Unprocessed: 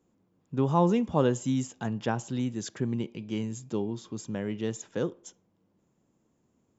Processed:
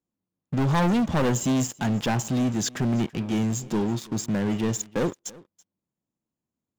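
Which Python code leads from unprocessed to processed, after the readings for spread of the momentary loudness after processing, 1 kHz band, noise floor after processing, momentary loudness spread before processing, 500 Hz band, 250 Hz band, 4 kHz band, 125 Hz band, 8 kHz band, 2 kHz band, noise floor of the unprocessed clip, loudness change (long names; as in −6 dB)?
6 LU, +3.0 dB, below −85 dBFS, 10 LU, +1.0 dB, +5.5 dB, +9.0 dB, +5.5 dB, can't be measured, +8.5 dB, −73 dBFS, +5.0 dB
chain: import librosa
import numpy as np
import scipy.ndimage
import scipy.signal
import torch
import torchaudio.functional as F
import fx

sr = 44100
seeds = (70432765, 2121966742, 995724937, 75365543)

y = fx.peak_eq(x, sr, hz=430.0, db=-4.5, octaves=0.61)
y = fx.leveller(y, sr, passes=5)
y = y + 10.0 ** (-22.5 / 20.0) * np.pad(y, (int(330 * sr / 1000.0), 0))[:len(y)]
y = F.gain(torch.from_numpy(y), -6.5).numpy()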